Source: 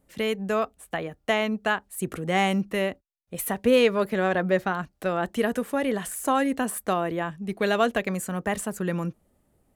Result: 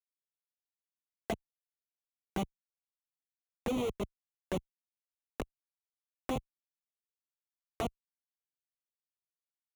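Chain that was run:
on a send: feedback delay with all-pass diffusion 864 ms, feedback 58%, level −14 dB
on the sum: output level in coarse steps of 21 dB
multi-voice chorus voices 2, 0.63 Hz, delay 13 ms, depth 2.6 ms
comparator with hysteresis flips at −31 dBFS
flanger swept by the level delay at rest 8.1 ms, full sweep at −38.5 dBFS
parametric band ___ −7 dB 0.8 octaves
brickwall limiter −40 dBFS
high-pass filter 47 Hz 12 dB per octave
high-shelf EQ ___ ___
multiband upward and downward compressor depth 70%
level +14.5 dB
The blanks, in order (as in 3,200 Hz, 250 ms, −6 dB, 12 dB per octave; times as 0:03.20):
4,600 Hz, 7,800 Hz, −7 dB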